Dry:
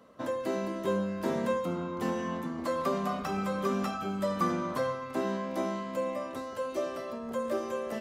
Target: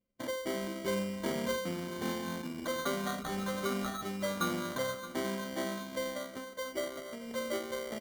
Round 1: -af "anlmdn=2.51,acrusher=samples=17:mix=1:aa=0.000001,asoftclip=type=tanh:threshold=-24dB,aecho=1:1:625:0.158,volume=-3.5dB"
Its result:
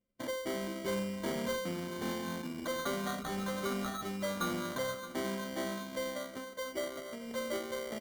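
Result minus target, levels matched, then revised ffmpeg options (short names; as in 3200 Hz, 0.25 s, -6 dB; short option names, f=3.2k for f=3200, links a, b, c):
soft clip: distortion +14 dB
-af "anlmdn=2.51,acrusher=samples=17:mix=1:aa=0.000001,asoftclip=type=tanh:threshold=-15.5dB,aecho=1:1:625:0.158,volume=-3.5dB"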